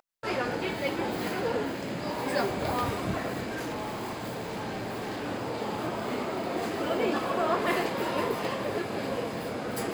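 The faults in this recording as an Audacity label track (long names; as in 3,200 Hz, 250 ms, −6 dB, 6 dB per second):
3.430000	5.280000	clipping −30.5 dBFS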